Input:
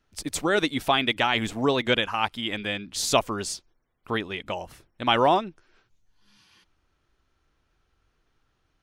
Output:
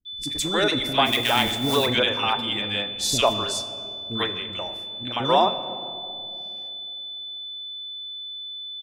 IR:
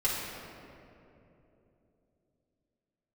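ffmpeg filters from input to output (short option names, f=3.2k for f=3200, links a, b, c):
-filter_complex "[0:a]aeval=exprs='val(0)+0.0398*sin(2*PI*3500*n/s)':c=same,asettb=1/sr,asplit=3[a][b][c];[a]atrim=end=4.224[d];[b]atrim=start=4.22:end=5.2,asetpts=PTS-STARTPTS,afade=t=in:d=0.004:c=qsin,afade=t=out:st=0.976:d=0.004:c=qsin,acompressor=threshold=-25dB:ratio=10[e];[c]atrim=start=5.196[f];[d][e]acrossfade=d=0.004:c1=hsin:c2=qsin[g];[g][f]acrossfade=d=0.004:c1=qsin:c2=hsin,agate=range=-33dB:threshold=-26dB:ratio=3:detection=peak,asplit=3[h][i][j];[h]afade=t=out:st=1:d=0.02[k];[i]acrusher=bits=3:mode=log:mix=0:aa=0.000001,afade=t=in:st=1:d=0.02,afade=t=out:st=1.82:d=0.02[l];[j]afade=t=in:st=1.82:d=0.02[m];[k][l][m]amix=inputs=3:normalize=0,acrossover=split=330|1700[n][o][p];[p]adelay=50[q];[o]adelay=90[r];[n][r][q]amix=inputs=3:normalize=0,asplit=2[s][t];[1:a]atrim=start_sample=2205,asetrate=52920,aresample=44100,adelay=28[u];[t][u]afir=irnorm=-1:irlink=0,volume=-17.5dB[v];[s][v]amix=inputs=2:normalize=0,volume=2.5dB"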